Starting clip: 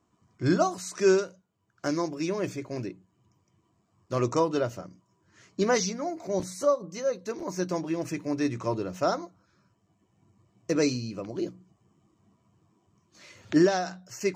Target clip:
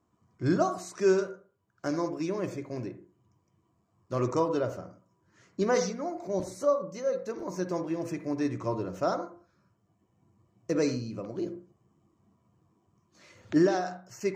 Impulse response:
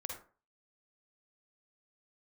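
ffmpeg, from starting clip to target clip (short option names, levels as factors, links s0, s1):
-filter_complex "[0:a]asplit=2[s0][s1];[1:a]atrim=start_sample=2205,lowpass=2000[s2];[s1][s2]afir=irnorm=-1:irlink=0,volume=0.891[s3];[s0][s3]amix=inputs=2:normalize=0,volume=0.501"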